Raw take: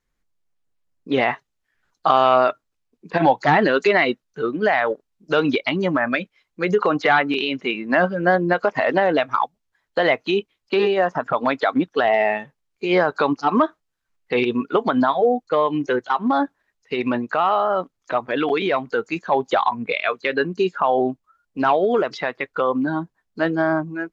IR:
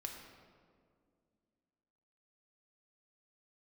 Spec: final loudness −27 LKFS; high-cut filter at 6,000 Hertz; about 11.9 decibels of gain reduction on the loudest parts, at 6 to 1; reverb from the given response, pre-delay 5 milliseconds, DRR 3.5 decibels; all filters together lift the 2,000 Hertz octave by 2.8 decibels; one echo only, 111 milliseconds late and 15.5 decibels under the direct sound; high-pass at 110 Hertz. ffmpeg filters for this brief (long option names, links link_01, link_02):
-filter_complex "[0:a]highpass=110,lowpass=6000,equalizer=frequency=2000:width_type=o:gain=3.5,acompressor=threshold=-23dB:ratio=6,aecho=1:1:111:0.168,asplit=2[link_01][link_02];[1:a]atrim=start_sample=2205,adelay=5[link_03];[link_02][link_03]afir=irnorm=-1:irlink=0,volume=-1.5dB[link_04];[link_01][link_04]amix=inputs=2:normalize=0,volume=-1dB"